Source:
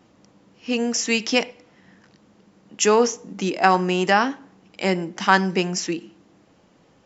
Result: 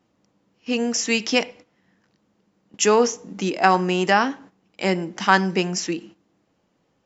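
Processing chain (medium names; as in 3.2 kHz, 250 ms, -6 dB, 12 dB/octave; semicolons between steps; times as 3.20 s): gate -43 dBFS, range -11 dB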